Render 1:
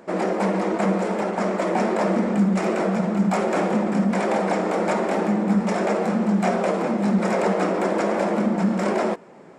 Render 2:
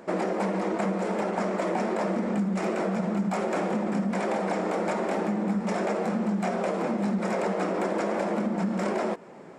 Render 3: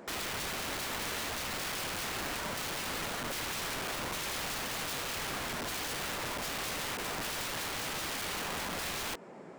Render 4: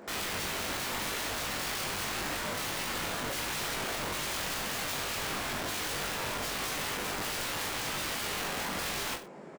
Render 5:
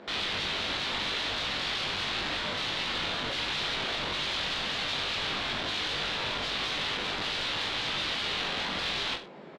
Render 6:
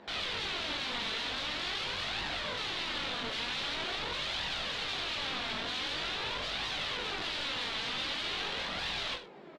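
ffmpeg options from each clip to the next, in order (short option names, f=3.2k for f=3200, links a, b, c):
-af "acompressor=threshold=-24dB:ratio=6"
-af "aeval=exprs='(mod(28.2*val(0)+1,2)-1)/28.2':c=same,volume=-3dB"
-af "aecho=1:1:20|42|66.2|92.82|122.1:0.631|0.398|0.251|0.158|0.1"
-af "lowpass=f=3.7k:t=q:w=3"
-af "flanger=delay=1:depth=3.6:regen=50:speed=0.45:shape=triangular"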